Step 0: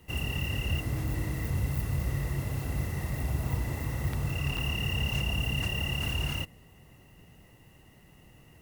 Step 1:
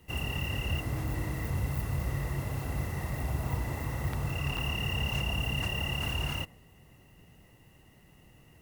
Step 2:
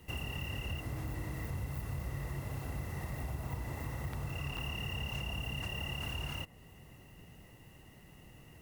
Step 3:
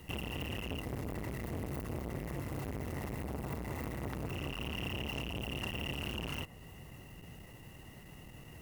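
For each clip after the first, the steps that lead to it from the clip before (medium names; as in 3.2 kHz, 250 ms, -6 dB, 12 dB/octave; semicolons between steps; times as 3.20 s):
dynamic bell 940 Hz, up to +5 dB, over -51 dBFS, Q 0.75; trim -2 dB
compression 2.5:1, threshold -42 dBFS, peak gain reduction 11 dB; trim +2 dB
transformer saturation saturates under 640 Hz; trim +5 dB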